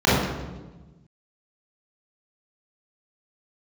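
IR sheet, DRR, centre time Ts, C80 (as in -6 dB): -10.0 dB, 88 ms, 2.0 dB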